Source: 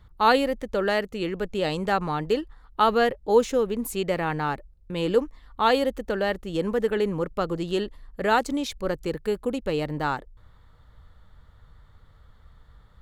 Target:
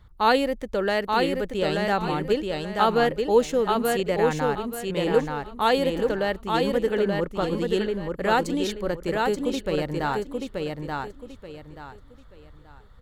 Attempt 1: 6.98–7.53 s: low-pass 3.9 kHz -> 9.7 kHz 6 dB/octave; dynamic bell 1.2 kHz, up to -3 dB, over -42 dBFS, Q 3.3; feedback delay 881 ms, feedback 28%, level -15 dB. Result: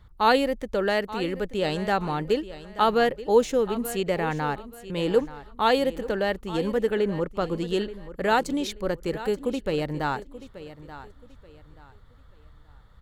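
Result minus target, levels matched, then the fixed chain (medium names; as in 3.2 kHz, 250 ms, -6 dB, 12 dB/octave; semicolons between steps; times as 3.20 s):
echo-to-direct -11.5 dB
6.98–7.53 s: low-pass 3.9 kHz -> 9.7 kHz 6 dB/octave; dynamic bell 1.2 kHz, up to -3 dB, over -42 dBFS, Q 3.3; feedback delay 881 ms, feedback 28%, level -3.5 dB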